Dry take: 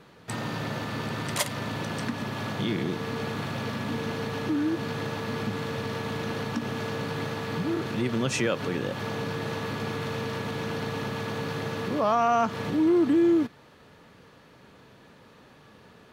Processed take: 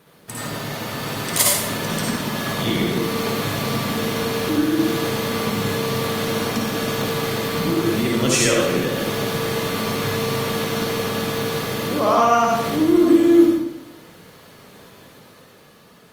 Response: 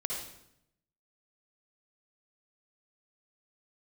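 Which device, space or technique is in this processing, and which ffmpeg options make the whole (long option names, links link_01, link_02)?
far-field microphone of a smart speaker: -filter_complex "[0:a]aemphasis=mode=production:type=50fm[link_01];[1:a]atrim=start_sample=2205[link_02];[link_01][link_02]afir=irnorm=-1:irlink=0,highpass=frequency=84:poles=1,dynaudnorm=framelen=190:gausssize=11:maxgain=5.5dB" -ar 48000 -c:a libopus -b:a 32k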